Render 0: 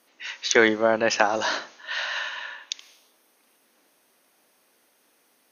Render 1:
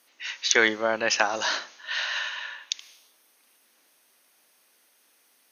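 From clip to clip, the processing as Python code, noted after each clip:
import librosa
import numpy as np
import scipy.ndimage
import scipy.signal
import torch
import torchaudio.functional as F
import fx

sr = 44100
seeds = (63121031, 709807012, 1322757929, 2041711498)

y = fx.tilt_shelf(x, sr, db=-5.0, hz=1100.0)
y = y * librosa.db_to_amplitude(-2.5)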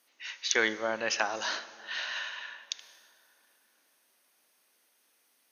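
y = fx.rev_plate(x, sr, seeds[0], rt60_s=3.7, hf_ratio=0.55, predelay_ms=0, drr_db=15.5)
y = y * librosa.db_to_amplitude(-6.5)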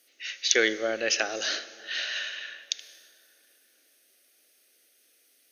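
y = fx.fixed_phaser(x, sr, hz=400.0, stages=4)
y = y * librosa.db_to_amplitude(6.5)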